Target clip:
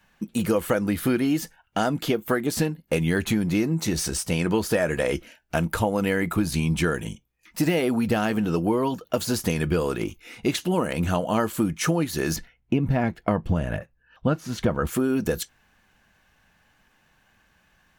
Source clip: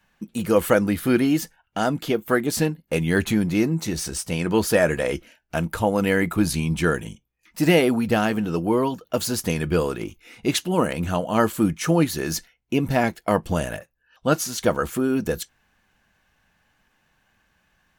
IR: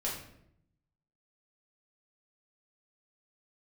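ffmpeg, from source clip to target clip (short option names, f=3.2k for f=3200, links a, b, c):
-filter_complex "[0:a]deesser=0.45,asettb=1/sr,asplit=3[a][b][c];[a]atrim=end=12.364[d];[b]atrim=start=12.36:end=14.87,asetpts=PTS-STARTPTS,afade=t=in:d=0.004:c=qsin,afade=t=out:st=2.506:d=0.004:c=qsin,bass=f=250:g=8,treble=f=4k:g=-14[e];[c]atrim=start=14.866[f];[d][e]acrossfade=d=0.004:c1=hsin:c2=qsin[g];[g][f]acrossfade=d=0.004:c1=qsin:c2=hsin,acompressor=threshold=-22dB:ratio=6,volume=3dB"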